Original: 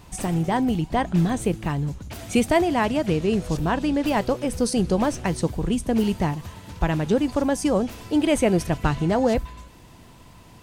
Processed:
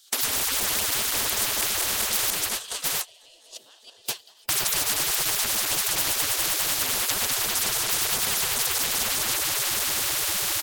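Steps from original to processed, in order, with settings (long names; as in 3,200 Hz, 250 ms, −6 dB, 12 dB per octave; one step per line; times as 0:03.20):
feedback delay that plays each chunk backwards 101 ms, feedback 84%, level −9 dB
downward compressor 3 to 1, threshold −24 dBFS, peak gain reduction 8.5 dB
0:02.30–0:04.49: guitar amp tone stack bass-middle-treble 10-0-1
automatic gain control gain up to 9.5 dB
mains-hum notches 50/100/150 Hz
gate on every frequency bin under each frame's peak −25 dB weak
high shelf with overshoot 2,800 Hz +7 dB, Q 3
single-tap delay 712 ms −17 dB
noise gate −42 dBFS, range −37 dB
every bin compressed towards the loudest bin 10 to 1
level +1.5 dB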